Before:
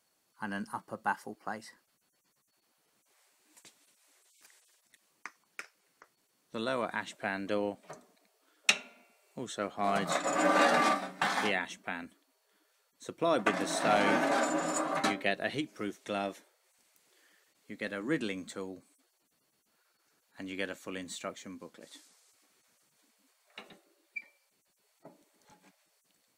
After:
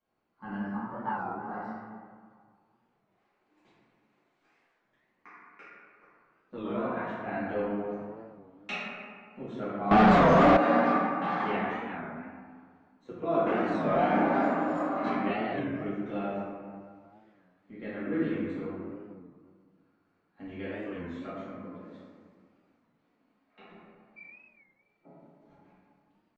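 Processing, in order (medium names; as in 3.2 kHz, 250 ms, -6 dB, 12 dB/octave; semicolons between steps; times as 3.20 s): reverberation RT60 1.9 s, pre-delay 4 ms, DRR -13 dB; 9.91–10.57 s: waveshaping leveller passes 5; tape spacing loss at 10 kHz 41 dB; warped record 33 1/3 rpm, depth 160 cents; trim -8.5 dB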